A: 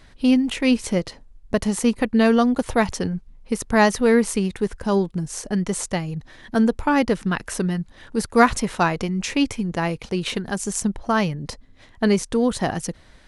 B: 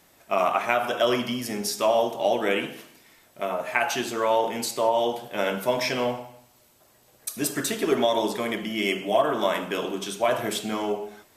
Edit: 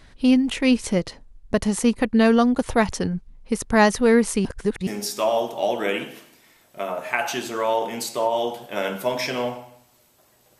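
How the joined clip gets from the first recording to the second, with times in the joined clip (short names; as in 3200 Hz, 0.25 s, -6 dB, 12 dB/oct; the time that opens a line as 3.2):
A
4.45–4.87 reverse
4.87 switch to B from 1.49 s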